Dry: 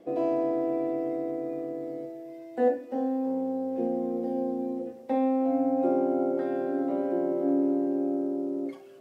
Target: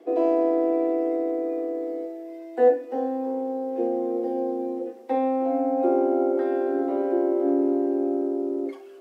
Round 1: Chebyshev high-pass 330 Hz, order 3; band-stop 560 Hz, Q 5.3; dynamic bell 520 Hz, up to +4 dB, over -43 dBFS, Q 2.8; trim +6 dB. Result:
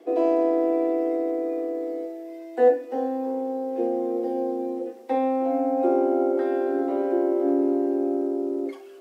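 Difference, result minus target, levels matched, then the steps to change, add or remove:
4 kHz band +3.0 dB
add after Chebyshev high-pass: treble shelf 2.3 kHz -4.5 dB

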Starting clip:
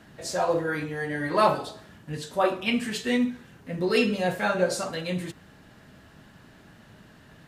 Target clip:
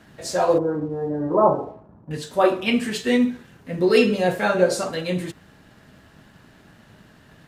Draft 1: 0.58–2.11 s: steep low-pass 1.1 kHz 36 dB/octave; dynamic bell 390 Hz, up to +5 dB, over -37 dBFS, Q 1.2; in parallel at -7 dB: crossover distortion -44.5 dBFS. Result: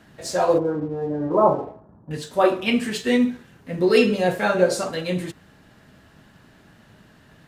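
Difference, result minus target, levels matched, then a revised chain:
crossover distortion: distortion +7 dB
0.58–2.11 s: steep low-pass 1.1 kHz 36 dB/octave; dynamic bell 390 Hz, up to +5 dB, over -37 dBFS, Q 1.2; in parallel at -7 dB: crossover distortion -52.5 dBFS

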